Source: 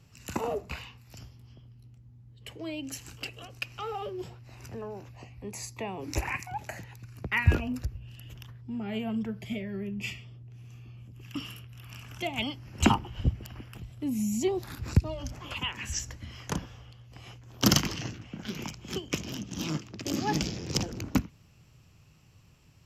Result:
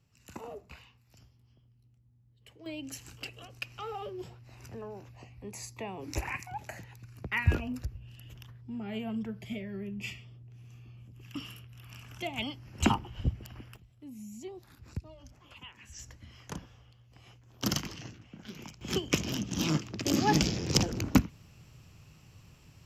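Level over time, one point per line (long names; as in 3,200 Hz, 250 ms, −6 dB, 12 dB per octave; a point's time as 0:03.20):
−12 dB
from 0:02.66 −3.5 dB
from 0:13.76 −15.5 dB
from 0:15.99 −8.5 dB
from 0:18.81 +3.5 dB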